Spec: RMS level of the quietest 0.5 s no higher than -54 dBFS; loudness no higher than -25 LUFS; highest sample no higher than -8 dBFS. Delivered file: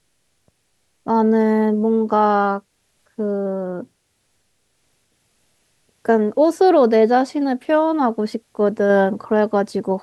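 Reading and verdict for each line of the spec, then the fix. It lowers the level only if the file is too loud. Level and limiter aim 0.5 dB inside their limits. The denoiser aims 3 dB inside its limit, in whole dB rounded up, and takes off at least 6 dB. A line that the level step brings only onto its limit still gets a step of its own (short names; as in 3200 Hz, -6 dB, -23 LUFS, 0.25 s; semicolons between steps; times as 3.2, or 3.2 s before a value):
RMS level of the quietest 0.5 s -66 dBFS: OK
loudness -18.0 LUFS: fail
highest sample -5.5 dBFS: fail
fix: gain -7.5 dB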